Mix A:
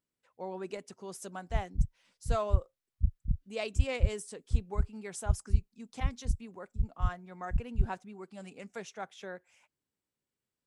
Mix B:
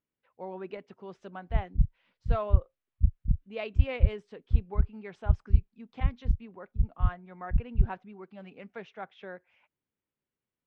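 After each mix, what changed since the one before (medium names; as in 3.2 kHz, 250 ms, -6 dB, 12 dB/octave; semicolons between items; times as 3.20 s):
background +4.5 dB; master: add low-pass 3.2 kHz 24 dB/octave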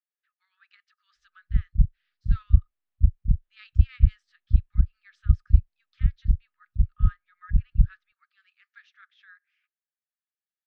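speech: add rippled Chebyshev high-pass 1.2 kHz, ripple 9 dB; background: add bass shelf 190 Hz +5.5 dB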